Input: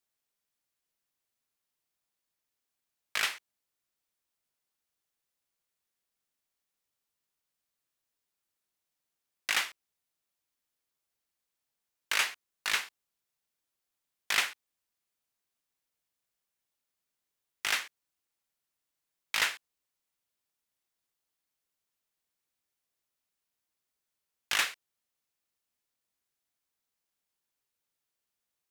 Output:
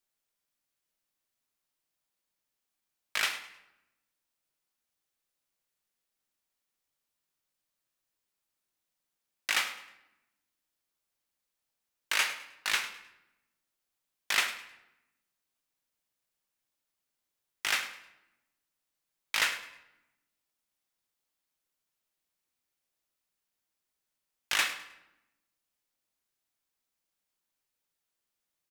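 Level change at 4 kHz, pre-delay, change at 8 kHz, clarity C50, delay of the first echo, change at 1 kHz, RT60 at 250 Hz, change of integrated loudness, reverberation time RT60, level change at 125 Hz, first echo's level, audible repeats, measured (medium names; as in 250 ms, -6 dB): +0.5 dB, 3 ms, +0.5 dB, 10.5 dB, 104 ms, +1.0 dB, 1.3 s, 0.0 dB, 0.95 s, no reading, -15.0 dB, 2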